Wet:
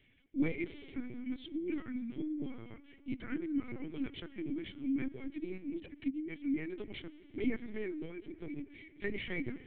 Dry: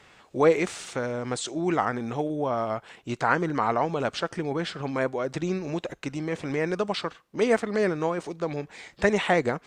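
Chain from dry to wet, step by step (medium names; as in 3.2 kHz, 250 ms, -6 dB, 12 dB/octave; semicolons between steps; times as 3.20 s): reverb removal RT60 0.56 s; vowel filter i; treble shelf 2.2 kHz -4.5 dB; spring tank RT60 3.3 s, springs 32/38 ms, chirp 60 ms, DRR 13.5 dB; LPC vocoder at 8 kHz pitch kept; trim +2.5 dB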